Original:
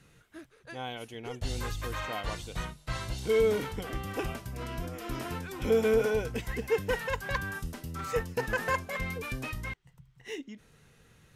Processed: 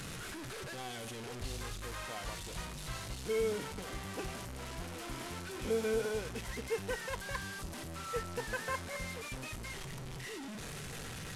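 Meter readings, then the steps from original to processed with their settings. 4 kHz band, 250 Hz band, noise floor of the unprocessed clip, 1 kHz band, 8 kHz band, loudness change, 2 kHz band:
−2.0 dB, −6.5 dB, −62 dBFS, −6.0 dB, +2.0 dB, −7.0 dB, −6.0 dB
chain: linear delta modulator 64 kbit/s, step −30 dBFS
tuned comb filter 190 Hz, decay 1.1 s, mix 70%
level +2 dB

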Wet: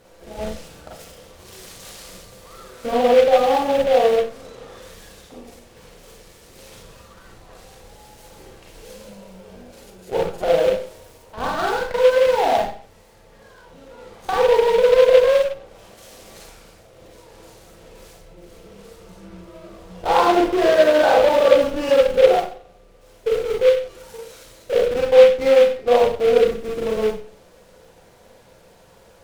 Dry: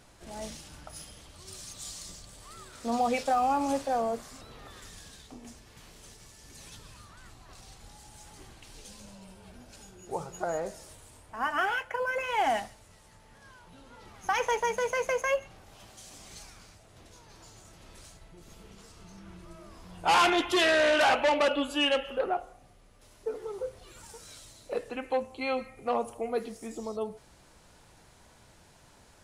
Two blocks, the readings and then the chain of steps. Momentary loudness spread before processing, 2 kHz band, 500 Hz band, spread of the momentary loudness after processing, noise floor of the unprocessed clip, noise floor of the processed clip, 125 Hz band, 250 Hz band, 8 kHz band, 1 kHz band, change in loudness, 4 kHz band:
24 LU, +3.5 dB, +16.0 dB, 15 LU, −58 dBFS, −50 dBFS, +9.0 dB, +7.5 dB, can't be measured, +7.0 dB, +12.0 dB, +4.0 dB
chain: treble cut that deepens with the level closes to 1,300 Hz, closed at −28 dBFS
parametric band 500 Hz +13.5 dB 0.56 octaves
in parallel at −9 dB: comparator with hysteresis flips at −28.5 dBFS
on the sum: four-comb reverb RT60 0.41 s, combs from 33 ms, DRR −3 dB
short delay modulated by noise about 2,200 Hz, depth 0.035 ms

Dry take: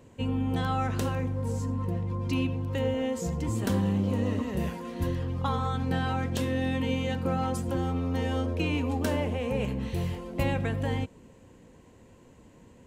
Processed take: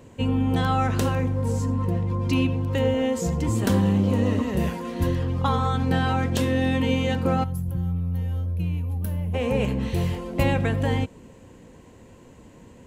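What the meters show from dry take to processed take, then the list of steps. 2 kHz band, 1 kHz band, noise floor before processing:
+5.0 dB, +5.0 dB, −55 dBFS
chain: gain on a spectral selection 0:07.44–0:09.34, 210–10,000 Hz −19 dB
level +6 dB

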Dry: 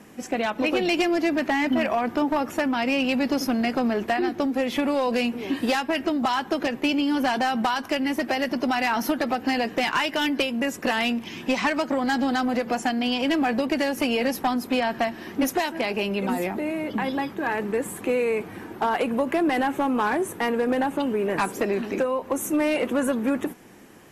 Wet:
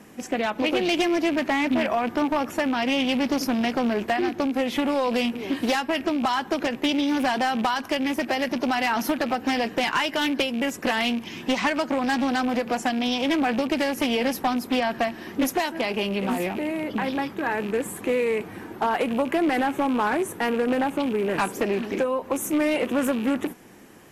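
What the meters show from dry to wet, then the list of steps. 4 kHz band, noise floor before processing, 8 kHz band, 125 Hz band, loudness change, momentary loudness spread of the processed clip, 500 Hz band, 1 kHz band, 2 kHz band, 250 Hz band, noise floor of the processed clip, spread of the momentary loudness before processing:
+1.0 dB, −41 dBFS, +0.5 dB, +0.5 dB, 0.0 dB, 4 LU, 0.0 dB, 0.0 dB, 0.0 dB, 0.0 dB, −41 dBFS, 4 LU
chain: loose part that buzzes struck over −33 dBFS, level −28 dBFS
high-shelf EQ 11,000 Hz +4 dB
highs frequency-modulated by the lows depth 0.21 ms

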